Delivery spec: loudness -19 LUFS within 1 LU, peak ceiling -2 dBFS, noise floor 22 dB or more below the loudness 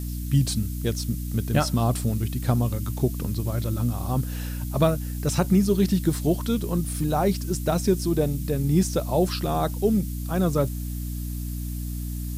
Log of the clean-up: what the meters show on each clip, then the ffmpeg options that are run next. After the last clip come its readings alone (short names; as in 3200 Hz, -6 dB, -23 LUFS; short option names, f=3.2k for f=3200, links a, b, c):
hum 60 Hz; harmonics up to 300 Hz; hum level -28 dBFS; noise floor -31 dBFS; noise floor target -47 dBFS; loudness -25.0 LUFS; peak -7.0 dBFS; loudness target -19.0 LUFS
-> -af "bandreject=f=60:t=h:w=6,bandreject=f=120:t=h:w=6,bandreject=f=180:t=h:w=6,bandreject=f=240:t=h:w=6,bandreject=f=300:t=h:w=6"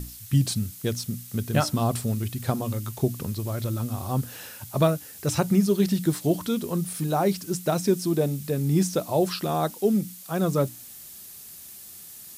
hum none; noise floor -44 dBFS; noise floor target -48 dBFS
-> -af "afftdn=nr=6:nf=-44"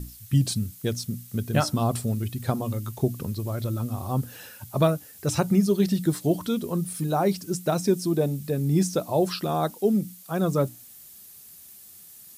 noise floor -48 dBFS; loudness -26.0 LUFS; peak -7.5 dBFS; loudness target -19.0 LUFS
-> -af "volume=7dB,alimiter=limit=-2dB:level=0:latency=1"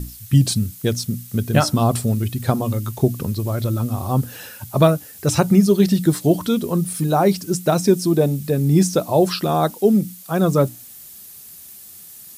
loudness -19.0 LUFS; peak -2.0 dBFS; noise floor -41 dBFS